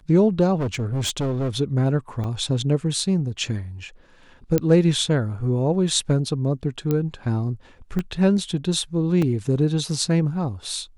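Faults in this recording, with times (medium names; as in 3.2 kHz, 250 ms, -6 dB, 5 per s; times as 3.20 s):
0.55–1.49 s: clipped -20.5 dBFS
2.24 s: dropout 2.2 ms
4.58 s: pop -7 dBFS
6.91 s: pop -11 dBFS
7.99 s: pop -15 dBFS
9.22 s: dropout 3.6 ms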